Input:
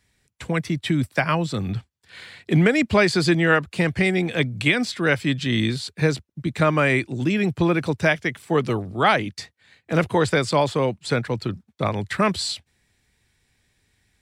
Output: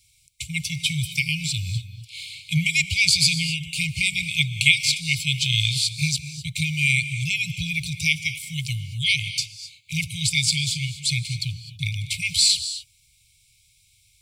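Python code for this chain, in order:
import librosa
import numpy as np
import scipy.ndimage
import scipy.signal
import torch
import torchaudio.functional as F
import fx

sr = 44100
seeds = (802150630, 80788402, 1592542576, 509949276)

y = fx.brickwall_bandstop(x, sr, low_hz=160.0, high_hz=2100.0)
y = fx.high_shelf(y, sr, hz=3200.0, db=12.0)
y = fx.rev_gated(y, sr, seeds[0], gate_ms=280, shape='rising', drr_db=11.5)
y = y * 10.0 ** (1.5 / 20.0)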